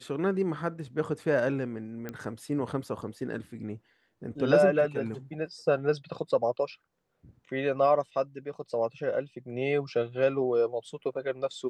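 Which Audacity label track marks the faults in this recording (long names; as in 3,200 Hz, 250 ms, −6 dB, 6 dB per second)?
2.090000	2.090000	click −22 dBFS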